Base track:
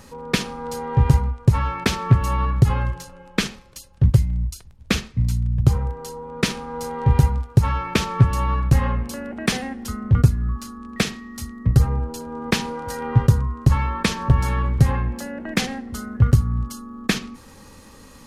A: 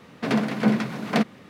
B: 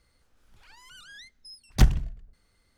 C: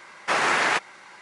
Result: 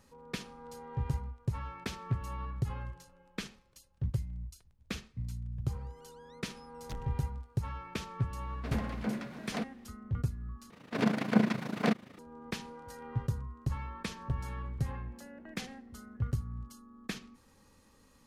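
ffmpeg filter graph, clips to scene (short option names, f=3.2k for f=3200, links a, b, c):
-filter_complex "[1:a]asplit=2[a][b];[0:a]volume=-18dB[c];[2:a]asoftclip=type=hard:threshold=-18dB[d];[b]tremolo=f=27:d=0.75[e];[c]asplit=2[f][g];[f]atrim=end=10.704[h];[e]atrim=end=1.49,asetpts=PTS-STARTPTS,volume=-2.5dB[i];[g]atrim=start=12.186[j];[d]atrim=end=2.77,asetpts=PTS-STARTPTS,volume=-18dB,afade=t=in:d=0.004:c=hsin,afade=t=out:st=2.766:d=0.004:c=hsin,adelay=5110[k];[a]atrim=end=1.49,asetpts=PTS-STARTPTS,volume=-14.5dB,afade=t=in:d=0.004:c=hsin,afade=t=out:st=1.486:d=0.004:c=hsin,adelay=8410[l];[h][i]acrossfade=d=0.004:c1=hsin:c2=hsin[m];[m][j]acrossfade=d=0.004:c1=hsin:c2=hsin[n];[n][k][l]amix=inputs=3:normalize=0"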